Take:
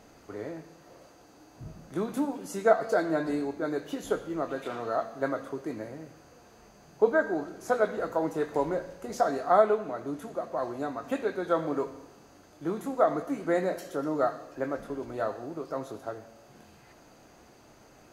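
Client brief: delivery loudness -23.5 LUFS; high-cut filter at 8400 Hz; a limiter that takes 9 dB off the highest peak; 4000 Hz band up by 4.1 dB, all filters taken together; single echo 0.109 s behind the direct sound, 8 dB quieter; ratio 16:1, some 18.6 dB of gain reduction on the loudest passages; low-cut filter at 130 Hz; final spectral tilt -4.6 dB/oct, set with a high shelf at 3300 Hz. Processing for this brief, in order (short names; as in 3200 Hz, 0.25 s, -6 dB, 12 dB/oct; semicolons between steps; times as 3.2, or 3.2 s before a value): HPF 130 Hz; LPF 8400 Hz; high shelf 3300 Hz +3 dB; bell 4000 Hz +3 dB; compressor 16:1, threshold -34 dBFS; limiter -30 dBFS; echo 0.109 s -8 dB; gain +17.5 dB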